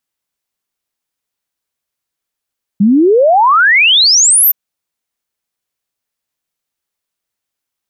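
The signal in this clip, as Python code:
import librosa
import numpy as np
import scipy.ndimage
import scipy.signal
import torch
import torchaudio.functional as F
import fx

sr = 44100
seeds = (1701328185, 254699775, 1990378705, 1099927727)

y = fx.ess(sr, length_s=1.72, from_hz=190.0, to_hz=14000.0, level_db=-5.0)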